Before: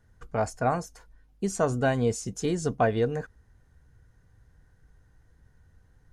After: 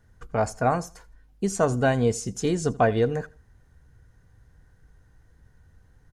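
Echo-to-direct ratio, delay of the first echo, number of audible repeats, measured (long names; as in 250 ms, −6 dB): −21.5 dB, 82 ms, 2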